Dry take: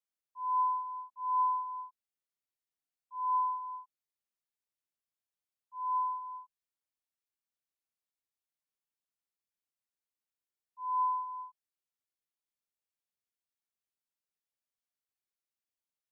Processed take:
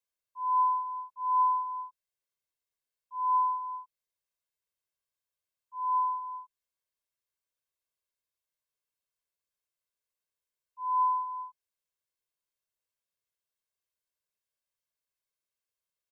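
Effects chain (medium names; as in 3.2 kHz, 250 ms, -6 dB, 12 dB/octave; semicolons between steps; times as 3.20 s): comb 1.9 ms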